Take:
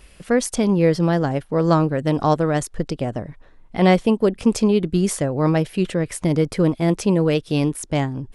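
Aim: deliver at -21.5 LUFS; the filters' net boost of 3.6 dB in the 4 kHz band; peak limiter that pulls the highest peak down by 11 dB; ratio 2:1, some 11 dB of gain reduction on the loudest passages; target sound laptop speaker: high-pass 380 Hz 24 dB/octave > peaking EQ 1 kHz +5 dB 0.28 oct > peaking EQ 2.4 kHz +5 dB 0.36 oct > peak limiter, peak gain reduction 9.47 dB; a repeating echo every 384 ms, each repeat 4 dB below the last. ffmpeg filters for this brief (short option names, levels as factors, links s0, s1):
-af "equalizer=f=4000:t=o:g=4,acompressor=threshold=0.0251:ratio=2,alimiter=level_in=1.19:limit=0.0631:level=0:latency=1,volume=0.841,highpass=f=380:w=0.5412,highpass=f=380:w=1.3066,equalizer=f=1000:t=o:w=0.28:g=5,equalizer=f=2400:t=o:w=0.36:g=5,aecho=1:1:384|768|1152|1536|1920|2304|2688|3072|3456:0.631|0.398|0.25|0.158|0.0994|0.0626|0.0394|0.0249|0.0157,volume=7.94,alimiter=limit=0.251:level=0:latency=1"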